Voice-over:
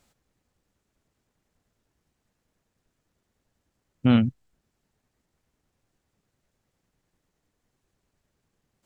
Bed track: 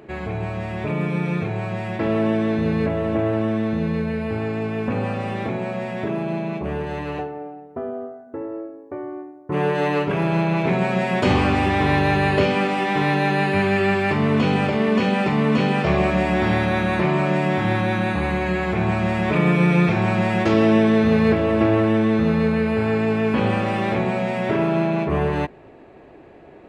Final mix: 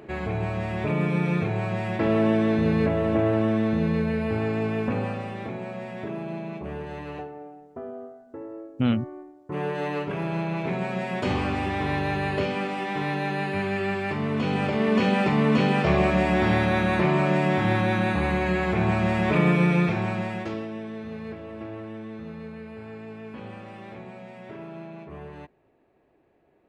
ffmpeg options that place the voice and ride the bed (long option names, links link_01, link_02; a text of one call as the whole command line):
ffmpeg -i stem1.wav -i stem2.wav -filter_complex "[0:a]adelay=4750,volume=-4dB[link_01];[1:a]volume=5dB,afade=type=out:start_time=4.71:duration=0.61:silence=0.446684,afade=type=in:start_time=14.35:duration=0.7:silence=0.501187,afade=type=out:start_time=19.4:duration=1.28:silence=0.133352[link_02];[link_01][link_02]amix=inputs=2:normalize=0" out.wav